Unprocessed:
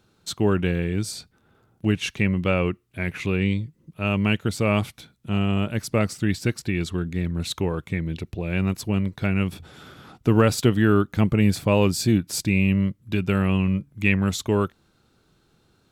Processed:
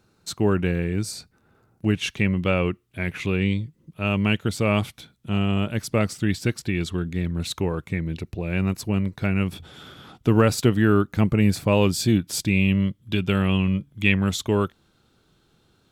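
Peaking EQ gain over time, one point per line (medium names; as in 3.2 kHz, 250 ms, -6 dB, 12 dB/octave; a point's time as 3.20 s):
peaking EQ 3.3 kHz 0.26 oct
-8 dB
from 1.94 s +3 dB
from 7.47 s -4 dB
from 9.54 s +7.5 dB
from 10.29 s -3 dB
from 11.73 s +6.5 dB
from 12.54 s +12.5 dB
from 14.18 s +5 dB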